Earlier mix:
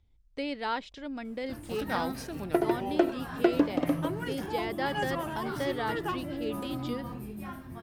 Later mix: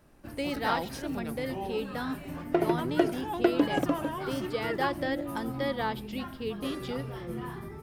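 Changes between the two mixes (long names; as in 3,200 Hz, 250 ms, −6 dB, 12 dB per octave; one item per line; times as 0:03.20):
first sound: entry −1.25 s
reverb: on, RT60 1.0 s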